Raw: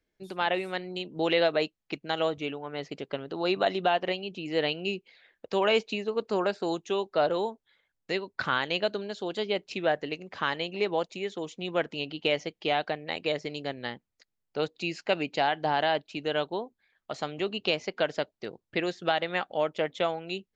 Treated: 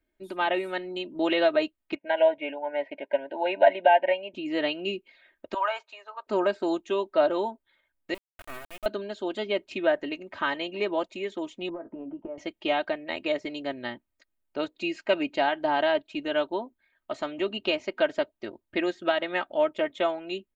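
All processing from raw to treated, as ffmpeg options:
-filter_complex "[0:a]asettb=1/sr,asplit=3[a][b][c];[a]atrim=end=1.954[d];[b]atrim=start=1.95:end=4.34,asetpts=PTS-STARTPTS,afade=t=in:d=0.004:c=qsin,afade=t=out:st=2.386:d=0.004:c=qsin,asuperstop=centerf=1200:order=20:qfactor=2.8,highpass=340,equalizer=f=370:t=q:w=4:g=-9,equalizer=f=580:t=q:w=4:g=9,equalizer=f=870:t=q:w=4:g=6,equalizer=f=1.3k:t=q:w=4:g=6,equalizer=f=2.2k:t=q:w=4:g=6,lowpass=f=2.8k:w=0.5412,lowpass=f=2.8k:w=1.3066[e];[c]atrim=start=4.336[f];[d][e]acrossfade=d=0.004:c1=hsin:c2=qsin[g];[g][f]acrossfade=d=0.004:c1=qsin:c2=hsin,asettb=1/sr,asplit=3[h][i][j];[h]atrim=end=5.544[k];[i]atrim=start=5.54:end=6.27,asetpts=PTS-STARTPTS,afade=t=in:d=0.004:c=qsin,afade=t=out:st=0.726:d=0.004:c=qsin,highpass=f=800:w=0.5412,highpass=f=800:w=1.3066,highshelf=f=1.8k:t=q:w=1.5:g=-8.5[l];[j]atrim=start=6.266[m];[k][l]acrossfade=d=0.004:c1=hsin:c2=qsin[n];[n][m]acrossfade=d=0.004:c1=qsin:c2=hsin,asettb=1/sr,asplit=3[o][p][q];[o]atrim=end=8.144[r];[p]atrim=start=8.14:end=8.86,asetpts=PTS-STARTPTS,afade=t=in:d=0.004:c=qsin,afade=t=out:st=0.716:d=0.004:c=qsin,asplit=3[s][t][u];[s]bandpass=f=730:t=q:w=8,volume=0dB[v];[t]bandpass=f=1.09k:t=q:w=8,volume=-6dB[w];[u]bandpass=f=2.44k:t=q:w=8,volume=-9dB[x];[v][w][x]amix=inputs=3:normalize=0,acrusher=bits=4:dc=4:mix=0:aa=0.000001[y];[q]atrim=start=8.856[z];[r][y]acrossfade=d=0.004:c1=hsin:c2=qsin[aa];[aa][z]acrossfade=d=0.004:c1=qsin:c2=hsin,asettb=1/sr,asplit=3[ab][ac][ad];[ab]atrim=end=11.694[ae];[ac]atrim=start=11.69:end=12.38,asetpts=PTS-STARTPTS,afade=t=in:d=0.004:c=qsin,afade=t=out:st=0.686:d=0.004:c=qsin,lowpass=f=1.1k:w=0.5412,lowpass=f=1.1k:w=1.3066,acompressor=threshold=-35dB:ratio=12:attack=3.2:release=140:knee=1:detection=peak,asplit=2[af][ag];[ag]adelay=18,volume=-9.5dB[ah];[af][ah]amix=inputs=2:normalize=0,atrim=end_sample=30429[ai];[ad]atrim=start=12.376[aj];[ae][ai]acrossfade=d=0.004:c1=hsin:c2=qsin[ak];[ak][aj]acrossfade=d=0.004:c1=qsin:c2=hsin,equalizer=f=5.4k:t=o:w=0.94:g=-10,aecho=1:1:3.2:0.77"

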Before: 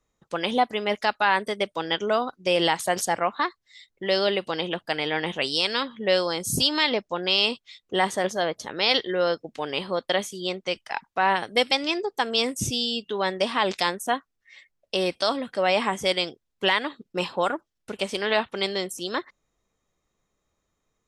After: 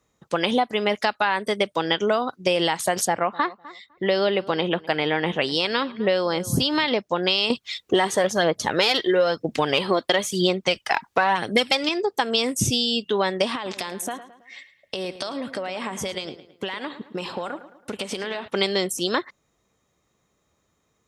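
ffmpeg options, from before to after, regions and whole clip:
-filter_complex "[0:a]asettb=1/sr,asplit=3[a][b][c];[a]atrim=end=3.074[d];[b]atrim=start=3.07:end=6.88,asetpts=PTS-STARTPTS,afade=t=in:d=0.004:c=qsin,afade=t=out:st=3.806:d=0.004:c=qsin,equalizer=f=8.4k:t=o:w=1.8:g=-11.5,asplit=2[e][f];[f]adelay=252,lowpass=f=2.3k:p=1,volume=-22dB,asplit=2[g][h];[h]adelay=252,lowpass=f=2.3k:p=1,volume=0.15[i];[e][g][i]amix=inputs=3:normalize=0,atrim=end_sample=168021[j];[c]atrim=start=6.876[k];[d][j]acrossfade=d=0.004:c1=hsin:c2=qsin[l];[l][k]acrossfade=d=0.004:c1=qsin:c2=hsin,asettb=1/sr,asplit=3[m][n][o];[m]atrim=end=7.504[p];[n]atrim=start=7.5:end=11.89,asetpts=PTS-STARTPTS,afade=t=in:d=0.004:c=qsin,afade=t=out:st=4.386:d=0.004:c=qsin,acontrast=76,aphaser=in_gain=1:out_gain=1:delay=3.2:decay=0.41:speed=1:type=triangular[q];[o]atrim=start=11.886[r];[p][q]acrossfade=d=0.004:c1=hsin:c2=qsin[s];[s][r]acrossfade=d=0.004:c1=qsin:c2=hsin,asettb=1/sr,asplit=3[t][u][v];[t]atrim=end=13.554[w];[u]atrim=start=13.55:end=18.48,asetpts=PTS-STARTPTS,afade=t=in:d=0.004:c=qsin,afade=t=out:st=4.926:d=0.004:c=qsin,acompressor=threshold=-32dB:ratio=20:attack=3.2:release=140:knee=1:detection=peak,asplit=2[x][y];[y]adelay=109,lowpass=f=4k:p=1,volume=-13dB,asplit=2[z][aa];[aa]adelay=109,lowpass=f=4k:p=1,volume=0.45,asplit=2[ab][ac];[ac]adelay=109,lowpass=f=4k:p=1,volume=0.45,asplit=2[ad][ae];[ae]adelay=109,lowpass=f=4k:p=1,volume=0.45[af];[x][z][ab][ad][af]amix=inputs=5:normalize=0,atrim=end_sample=217413[ag];[v]atrim=start=18.476[ah];[w][ag]acrossfade=d=0.004:c1=hsin:c2=qsin[ai];[ai][ah]acrossfade=d=0.004:c1=qsin:c2=hsin,acompressor=threshold=-25dB:ratio=6,highpass=86,lowshelf=f=120:g=5,volume=7dB"

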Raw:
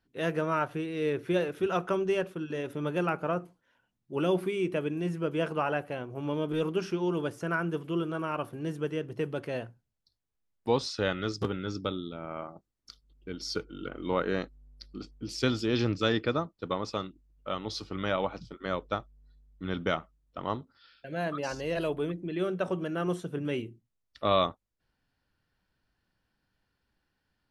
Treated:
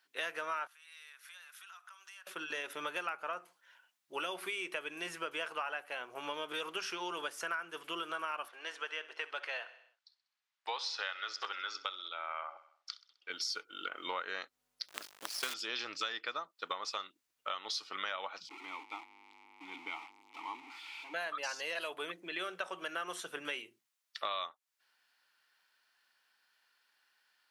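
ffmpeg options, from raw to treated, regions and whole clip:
-filter_complex "[0:a]asettb=1/sr,asplit=3[a][b][c];[a]atrim=end=0.674[d];[b]atrim=start=0.67:end=2.27,asetpts=PTS-STARTPTS,afade=t=in:d=0.004:c=qsin,afade=t=out:st=1.596:d=0.004:c=qsin,highpass=f=1.2k:w=0.5412,highpass=f=1.2k:w=1.3066,equalizer=f=2.3k:w=0.61:g=-10.5,acompressor=threshold=-59dB:ratio=6:attack=3.2:release=140:knee=1:detection=peak[e];[c]atrim=start=2.266[f];[d][e]acrossfade=d=0.004:c1=hsin:c2=qsin[g];[g][f]acrossfade=d=0.004:c1=qsin:c2=hsin,asettb=1/sr,asplit=3[h][i][j];[h]atrim=end=8.484[k];[i]atrim=start=8.48:end=13.3,asetpts=PTS-STARTPTS,afade=t=in:d=0.004:c=qsin,afade=t=out:st=4.816:d=0.004:c=qsin,highpass=620,lowpass=4.6k,aecho=1:1:64|128|192|256|320:0.119|0.0689|0.04|0.0232|0.0134,atrim=end_sample=212562[l];[j]atrim=start=13.296[m];[k][l]acrossfade=d=0.004:c1=hsin:c2=qsin[n];[n][m]acrossfade=d=0.004:c1=qsin:c2=hsin,asettb=1/sr,asplit=3[o][p][q];[o]atrim=end=14.884[r];[p]atrim=start=14.88:end=15.54,asetpts=PTS-STARTPTS,afade=t=in:d=0.004:c=qsin,afade=t=out:st=0.656:d=0.004:c=qsin,lowpass=8.4k,highshelf=f=2k:g=-4.5,acrusher=bits=6:dc=4:mix=0:aa=0.000001[s];[q]atrim=start=15.536[t];[r][s]acrossfade=d=0.004:c1=hsin:c2=qsin[u];[u][t]acrossfade=d=0.004:c1=qsin:c2=hsin,asettb=1/sr,asplit=3[v][w][x];[v]atrim=end=18.494[y];[w]atrim=start=18.49:end=21.14,asetpts=PTS-STARTPTS,afade=t=in:d=0.004:c=qsin,afade=t=out:st=2.646:d=0.004:c=qsin,aeval=exprs='val(0)+0.5*0.0299*sgn(val(0))':c=same,asplit=3[z][aa][ab];[z]bandpass=f=300:t=q:w=8,volume=0dB[ac];[aa]bandpass=f=870:t=q:w=8,volume=-6dB[ad];[ab]bandpass=f=2.24k:t=q:w=8,volume=-9dB[ae];[ac][ad][ae]amix=inputs=3:normalize=0[af];[x]atrim=start=21.136[ag];[y][af]acrossfade=d=0.004:c1=hsin:c2=qsin[ah];[ah][ag]acrossfade=d=0.004:c1=qsin:c2=hsin,highpass=1.2k,acompressor=threshold=-45dB:ratio=6,volume=9.5dB"

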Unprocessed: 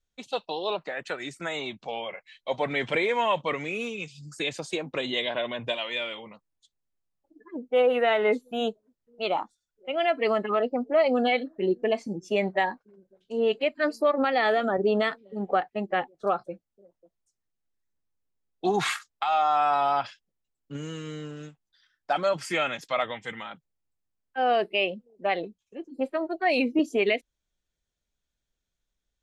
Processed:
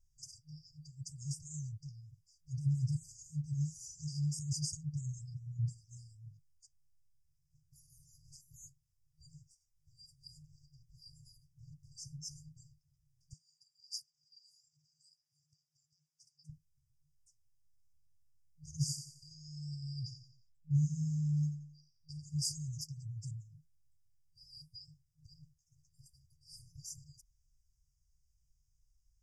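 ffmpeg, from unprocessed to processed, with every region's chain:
-filter_complex "[0:a]asettb=1/sr,asplit=3[a][b][c];[a]atrim=end=13.334[d];[b]atrim=start=13.33:end=16.5,asetpts=PTS-STARTPTS,afade=t=in:d=0.004:c=qsin,afade=t=out:st=3.166:d=0.004:c=qsin,aemphasis=mode=production:type=riaa,acompressor=threshold=-30dB:ratio=5:attack=3.2:release=140:knee=1:detection=peak,highpass=360,lowpass=4.1k[e];[c]atrim=start=16.496[f];[d][e]acrossfade=d=0.004:c1=hsin:c2=qsin[g];[g][f]acrossfade=d=0.004:c1=qsin:c2=hsin,asettb=1/sr,asplit=3[h][i][j];[h]atrim=end=18.714[k];[i]atrim=start=18.71:end=22.42,asetpts=PTS-STARTPTS,afade=t=in:d=0.004:c=qsin,afade=t=out:st=3.706:d=0.004:c=qsin,aemphasis=mode=reproduction:type=cd,aecho=1:1:88|176|264|352:0.316|0.133|0.0558|0.0234,atrim=end_sample=163611[l];[j]atrim=start=22.416[m];[k][l]acrossfade=d=0.004:c1=hsin:c2=qsin[n];[n][m]acrossfade=d=0.004:c1=qsin:c2=hsin,afftfilt=real='re*(1-between(b*sr/4096,160,4700))':imag='im*(1-between(b*sr/4096,160,4700))':win_size=4096:overlap=0.75,aemphasis=mode=reproduction:type=cd,volume=10.5dB"

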